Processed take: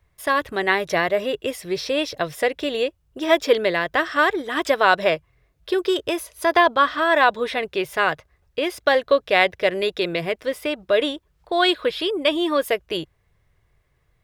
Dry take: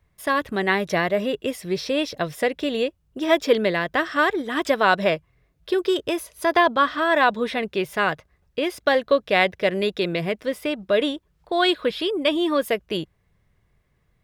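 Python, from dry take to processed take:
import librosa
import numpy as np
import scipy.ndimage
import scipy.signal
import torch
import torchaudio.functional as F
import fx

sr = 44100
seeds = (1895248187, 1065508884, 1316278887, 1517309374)

y = fx.peak_eq(x, sr, hz=210.0, db=-10.5, octaves=0.71)
y = y * 10.0 ** (2.0 / 20.0)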